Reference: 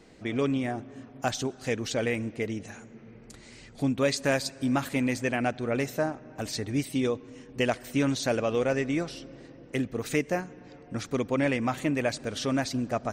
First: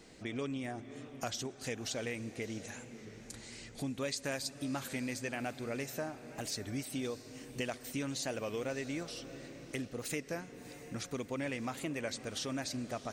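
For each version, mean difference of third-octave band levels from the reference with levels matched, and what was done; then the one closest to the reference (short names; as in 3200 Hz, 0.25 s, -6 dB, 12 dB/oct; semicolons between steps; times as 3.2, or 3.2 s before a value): 6.5 dB: high shelf 3300 Hz +8.5 dB; compressor 2:1, threshold -38 dBFS, peak gain reduction 10.5 dB; diffused feedback echo 0.651 s, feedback 49%, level -14.5 dB; record warp 33 1/3 rpm, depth 100 cents; gain -3.5 dB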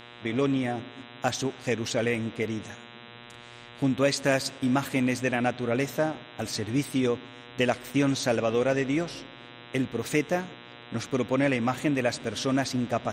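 2.5 dB: gate -42 dBFS, range -7 dB; HPF 53 Hz; buzz 120 Hz, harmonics 33, -49 dBFS -1 dB/oct; gain +1.5 dB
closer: second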